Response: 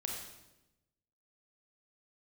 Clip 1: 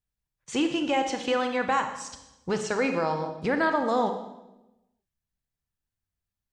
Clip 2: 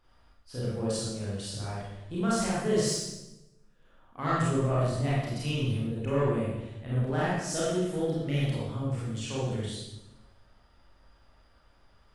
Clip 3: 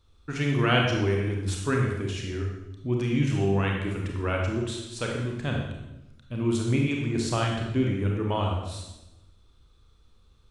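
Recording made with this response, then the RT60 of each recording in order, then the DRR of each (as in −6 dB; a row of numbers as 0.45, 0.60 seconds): 3; 0.95, 0.95, 0.95 seconds; 6.0, −8.0, −0.5 decibels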